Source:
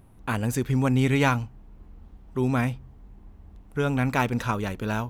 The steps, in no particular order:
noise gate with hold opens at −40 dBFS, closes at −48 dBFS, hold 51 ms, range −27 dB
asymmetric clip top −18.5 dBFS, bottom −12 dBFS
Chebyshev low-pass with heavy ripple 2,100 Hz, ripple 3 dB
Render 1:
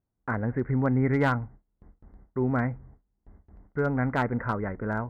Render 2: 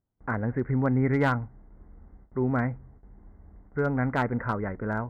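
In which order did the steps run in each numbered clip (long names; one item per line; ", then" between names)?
Chebyshev low-pass with heavy ripple, then noise gate with hold, then asymmetric clip
noise gate with hold, then Chebyshev low-pass with heavy ripple, then asymmetric clip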